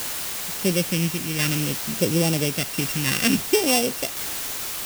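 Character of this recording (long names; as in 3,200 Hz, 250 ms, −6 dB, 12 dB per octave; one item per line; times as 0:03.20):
a buzz of ramps at a fixed pitch in blocks of 16 samples
phaser sweep stages 2, 0.59 Hz, lowest notch 690–1,500 Hz
a quantiser's noise floor 6 bits, dither triangular
tremolo saw down 0.72 Hz, depth 35%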